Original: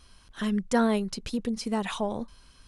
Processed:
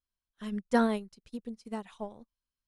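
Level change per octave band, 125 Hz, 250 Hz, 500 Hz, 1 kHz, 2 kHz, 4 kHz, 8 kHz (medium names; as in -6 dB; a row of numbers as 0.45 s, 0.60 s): no reading, -5.5 dB, -4.0 dB, -3.5 dB, -4.0 dB, -11.0 dB, -14.0 dB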